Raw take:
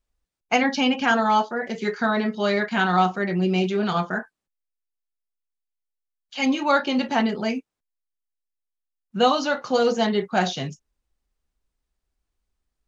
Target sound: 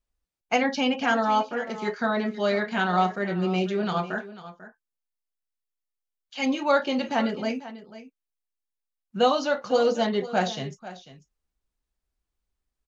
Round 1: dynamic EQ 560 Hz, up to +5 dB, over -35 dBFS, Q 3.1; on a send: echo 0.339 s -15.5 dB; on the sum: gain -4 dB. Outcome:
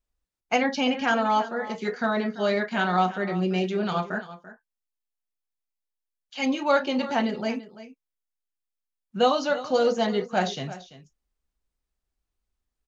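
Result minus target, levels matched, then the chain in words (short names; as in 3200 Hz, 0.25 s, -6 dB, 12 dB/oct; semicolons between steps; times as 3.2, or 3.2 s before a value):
echo 0.155 s early
dynamic EQ 560 Hz, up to +5 dB, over -35 dBFS, Q 3.1; on a send: echo 0.494 s -15.5 dB; on the sum: gain -4 dB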